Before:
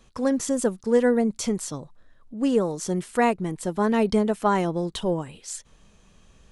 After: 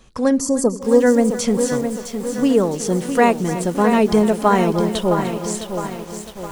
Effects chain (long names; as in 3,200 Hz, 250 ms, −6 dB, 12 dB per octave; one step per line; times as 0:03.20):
gain on a spectral selection 0:00.40–0:01.00, 1,300–4,200 Hz −20 dB
on a send: echo with a time of its own for lows and highs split 440 Hz, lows 84 ms, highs 299 ms, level −14 dB
on the sum: feedback echo at a low word length 661 ms, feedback 55%, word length 7 bits, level −7.5 dB
level +6 dB